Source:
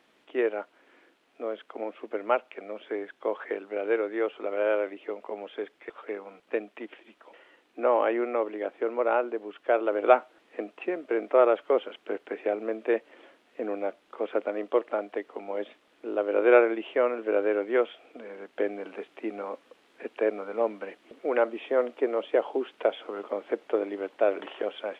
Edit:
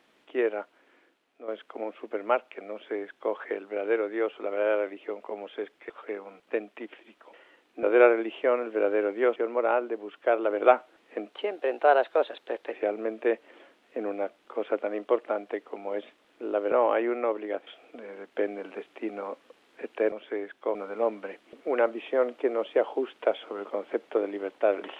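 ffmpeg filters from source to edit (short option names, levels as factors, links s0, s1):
-filter_complex "[0:a]asplit=10[s0][s1][s2][s3][s4][s5][s6][s7][s8][s9];[s0]atrim=end=1.48,asetpts=PTS-STARTPTS,afade=t=out:st=0.57:d=0.91:silence=0.334965[s10];[s1]atrim=start=1.48:end=7.832,asetpts=PTS-STARTPTS,afade=t=in:d=0.004:c=hsin:silence=0.334965[s11];[s2]atrim=start=16.348:end=17.882[s12];[s3]atrim=start=8.778:end=10.744[s13];[s4]atrim=start=10.74:end=12.36,asetpts=PTS-STARTPTS,asetrate=50715,aresample=44100,atrim=end_sample=62123,asetpts=PTS-STARTPTS[s14];[s5]atrim=start=12.356:end=16.352[s15];[s6]atrim=start=7.828:end=8.782[s16];[s7]atrim=start=17.878:end=20.332[s17];[s8]atrim=start=2.708:end=3.342[s18];[s9]atrim=start=20.328[s19];[s10][s11]concat=n=2:v=0:a=1[s20];[s20][s12]acrossfade=d=0.004:c1=hsin:c2=hsin[s21];[s21][s13]acrossfade=d=0.004:c1=hsin:c2=hsin[s22];[s22][s14]acrossfade=d=0.004:c1=hsin:c2=hsin[s23];[s23][s15]acrossfade=d=0.004:c1=hsin:c2=hsin[s24];[s24][s16]acrossfade=d=0.004:c1=hsin:c2=hsin[s25];[s25][s17]acrossfade=d=0.004:c1=hsin:c2=hsin[s26];[s26][s18]acrossfade=d=0.004:c1=hsin:c2=hsin[s27];[s27][s19]acrossfade=d=0.004:c1=hsin:c2=hsin"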